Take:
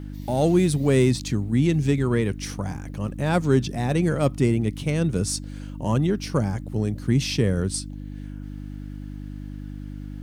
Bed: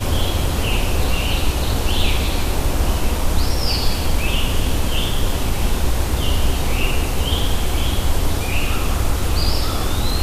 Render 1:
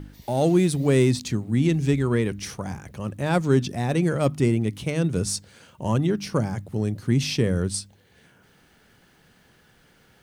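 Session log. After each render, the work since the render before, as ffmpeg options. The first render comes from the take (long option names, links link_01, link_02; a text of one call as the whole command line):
ffmpeg -i in.wav -af "bandreject=frequency=50:width_type=h:width=4,bandreject=frequency=100:width_type=h:width=4,bandreject=frequency=150:width_type=h:width=4,bandreject=frequency=200:width_type=h:width=4,bandreject=frequency=250:width_type=h:width=4,bandreject=frequency=300:width_type=h:width=4" out.wav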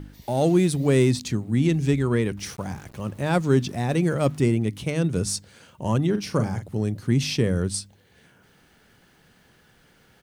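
ffmpeg -i in.wav -filter_complex "[0:a]asettb=1/sr,asplit=3[link_01][link_02][link_03];[link_01]atrim=end=2.374[link_04];[link_02]atrim=start=2.37:end=4.42,asetpts=PTS-STARTPTS,afade=type=in:duration=0.004:curve=qsin,afade=type=out:start_time=2.046:duration=0.004:curve=qsin,aeval=exprs='val(0)*gte(abs(val(0)),0.00562)':channel_layout=same[link_05];[link_03]atrim=start=4.416[link_06];[link_04][link_05]acrossfade=duration=0.004:curve1=hsin:curve2=qsin[link_07];[link_07][link_06]acrossfade=duration=0.004:curve1=qsin:curve2=hsin,asplit=3[link_08][link_09][link_10];[link_08]afade=type=out:start_time=6.13:duration=0.02[link_11];[link_09]asplit=2[link_12][link_13];[link_13]adelay=43,volume=-8.5dB[link_14];[link_12][link_14]amix=inputs=2:normalize=0,afade=type=in:start_time=6.13:duration=0.02,afade=type=out:start_time=6.67:duration=0.02[link_15];[link_10]afade=type=in:start_time=6.67:duration=0.02[link_16];[link_11][link_15][link_16]amix=inputs=3:normalize=0" out.wav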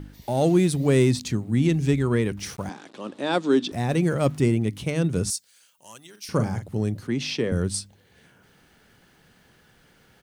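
ffmpeg -i in.wav -filter_complex "[0:a]asettb=1/sr,asplit=3[link_01][link_02][link_03];[link_01]atrim=end=2.694[link_04];[link_02]atrim=start=2.69:end=3.72,asetpts=PTS-STARTPTS,afade=type=in:duration=0.004:curve=qsin,afade=type=out:start_time=1.026:duration=0.004:curve=qsin,highpass=frequency=240:width=0.5412,highpass=frequency=240:width=1.3066,equalizer=frequency=290:width_type=q:width=4:gain=5,equalizer=frequency=2100:width_type=q:width=4:gain=-3,equalizer=frequency=3600:width_type=q:width=4:gain=8,equalizer=frequency=6400:width_type=q:width=4:gain=-5,lowpass=frequency=8000:width=0.5412,lowpass=frequency=8000:width=1.3066[link_05];[link_03]atrim=start=3.716[link_06];[link_04][link_05]acrossfade=duration=0.004:curve1=hsin:curve2=qsin[link_07];[link_07][link_06]acrossfade=duration=0.004:curve1=qsin:curve2=hsin,asettb=1/sr,asplit=3[link_08][link_09][link_10];[link_08]atrim=end=5.304[link_11];[link_09]atrim=start=5.3:end=6.29,asetpts=PTS-STARTPTS,afade=type=in:duration=0.004:curve=qsin,afade=type=out:start_time=0.986:duration=0.004:curve=qsin,aderivative[link_12];[link_10]atrim=start=6.286[link_13];[link_11][link_12]acrossfade=duration=0.004:curve1=hsin:curve2=qsin[link_14];[link_14][link_13]acrossfade=duration=0.004:curve1=qsin:curve2=hsin,asettb=1/sr,asplit=3[link_15][link_16][link_17];[link_15]atrim=end=7.074[link_18];[link_16]atrim=start=7.07:end=7.52,asetpts=PTS-STARTPTS,afade=type=in:duration=0.004:curve=qsin,afade=type=out:start_time=0.446:duration=0.004:curve=qsin,acrossover=split=220 5900:gain=0.2 1 0.2[link_19][link_20][link_21];[link_19][link_20][link_21]amix=inputs=3:normalize=0[link_22];[link_17]atrim=start=7.516[link_23];[link_18][link_22]acrossfade=duration=0.004:curve1=hsin:curve2=qsin[link_24];[link_24][link_23]acrossfade=duration=0.004:curve1=qsin:curve2=hsin" out.wav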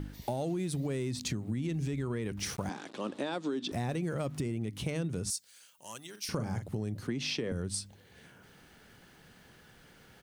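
ffmpeg -i in.wav -af "alimiter=limit=-18dB:level=0:latency=1:release=123,acompressor=threshold=-31dB:ratio=5" out.wav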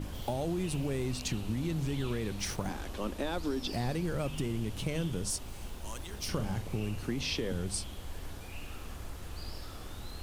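ffmpeg -i in.wav -i bed.wav -filter_complex "[1:a]volume=-24dB[link_01];[0:a][link_01]amix=inputs=2:normalize=0" out.wav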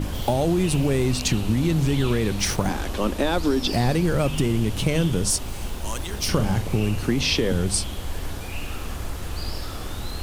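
ffmpeg -i in.wav -af "volume=12dB" out.wav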